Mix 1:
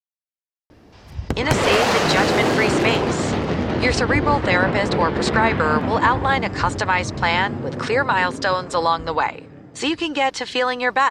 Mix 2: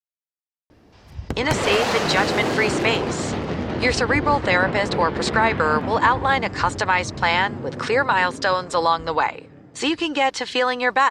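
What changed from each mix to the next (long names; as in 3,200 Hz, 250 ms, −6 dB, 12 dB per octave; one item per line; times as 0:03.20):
background −4.0 dB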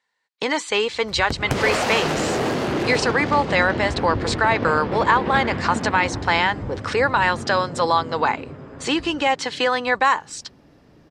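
speech: entry −0.95 s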